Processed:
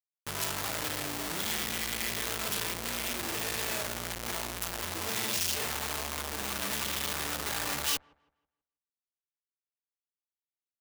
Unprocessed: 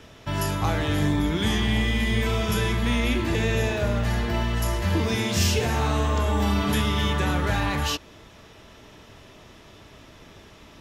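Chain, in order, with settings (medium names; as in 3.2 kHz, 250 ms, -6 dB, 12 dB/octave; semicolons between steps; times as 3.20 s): Schmitt trigger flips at -33.5 dBFS; tilt EQ +3 dB/octave; feedback echo behind a low-pass 161 ms, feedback 32%, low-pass 1.4 kHz, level -23.5 dB; trim -9 dB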